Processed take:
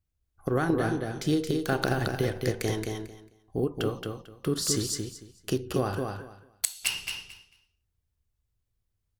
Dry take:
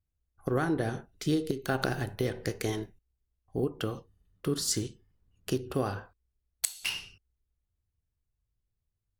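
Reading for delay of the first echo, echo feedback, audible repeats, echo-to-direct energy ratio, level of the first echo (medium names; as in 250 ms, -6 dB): 223 ms, 19%, 3, -4.5 dB, -4.5 dB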